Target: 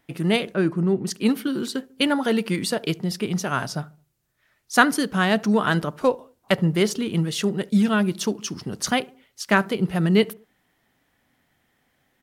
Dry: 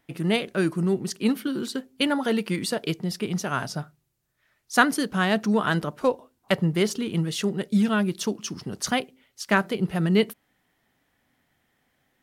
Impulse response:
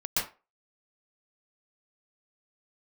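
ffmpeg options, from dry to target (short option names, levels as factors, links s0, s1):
-filter_complex "[0:a]asettb=1/sr,asplit=3[s0][s1][s2];[s0]atrim=end=0.544[s3];[s1]atrim=start=0.54:end=1.07,asetpts=PTS-STARTPTS,afade=t=in:d=0.004:c=qsin,afade=t=out:st=0.526:d=0.004:c=qsin,lowpass=f=1700:p=1[s4];[s2]atrim=start=1.066[s5];[s3][s4]acrossfade=d=0.004:c1=hsin:c2=qsin[s6];[s6][s5]acrossfade=d=0.004:c1=qsin:c2=hsin,asplit=2[s7][s8];[s8]adelay=72,lowpass=f=1200:p=1,volume=0.0794,asplit=2[s9][s10];[s10]adelay=72,lowpass=f=1200:p=1,volume=0.45,asplit=2[s11][s12];[s12]adelay=72,lowpass=f=1200:p=1,volume=0.45[s13];[s7][s9][s11][s13]amix=inputs=4:normalize=0,volume=1.33"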